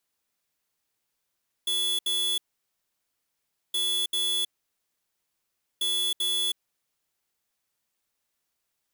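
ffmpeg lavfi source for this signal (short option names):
-f lavfi -i "aevalsrc='0.0473*(2*lt(mod(3420*t,1),0.5)-1)*clip(min(mod(mod(t,2.07),0.39),0.32-mod(mod(t,2.07),0.39))/0.005,0,1)*lt(mod(t,2.07),0.78)':d=6.21:s=44100"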